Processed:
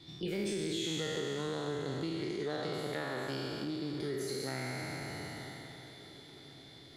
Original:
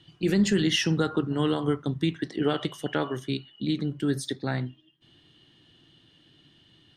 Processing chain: spectral trails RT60 2.53 s; compressor 3:1, threshold -39 dBFS, peak gain reduction 17 dB; formant shift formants +3 st; on a send: diffused feedback echo 0.977 s, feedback 53%, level -16 dB

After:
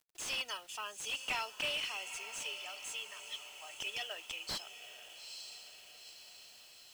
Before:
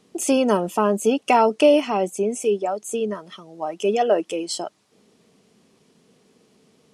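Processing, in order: ladder band-pass 4100 Hz, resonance 25%; diffused feedback echo 0.901 s, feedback 56%, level -12 dB; companded quantiser 6-bit; slew limiter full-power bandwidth 23 Hz; gain +8.5 dB

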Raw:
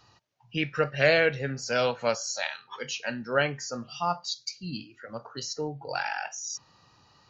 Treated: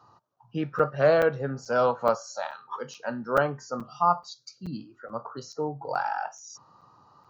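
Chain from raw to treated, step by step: HPF 110 Hz; resonant high shelf 1600 Hz -10.5 dB, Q 3; crackling interface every 0.43 s, samples 256, zero, from 0.36; gain +1.5 dB

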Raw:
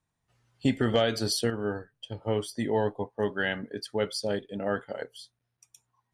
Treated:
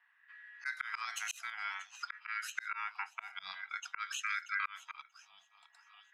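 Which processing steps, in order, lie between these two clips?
on a send: thin delay 0.634 s, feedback 45%, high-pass 2200 Hz, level -17 dB; on the sum: low-pass opened by the level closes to 960 Hz, open at -23.5 dBFS; high shelf 2600 Hz +9 dB; auto swell 0.711 s; compressor 3:1, threshold -52 dBFS, peak gain reduction 17.5 dB; ring modulator 1800 Hz; LFO high-pass sine 0.52 Hz 630–1600 Hz; FFT band-reject 190–660 Hz; gain +11.5 dB

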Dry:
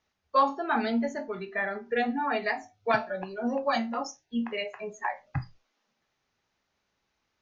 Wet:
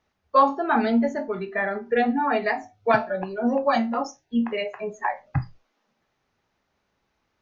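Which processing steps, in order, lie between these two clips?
high shelf 2100 Hz -8.5 dB; gain +7 dB

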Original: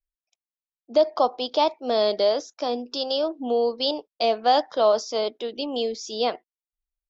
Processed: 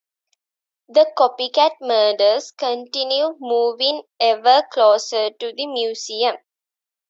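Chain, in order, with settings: HPF 440 Hz 12 dB/oct; gain +7 dB

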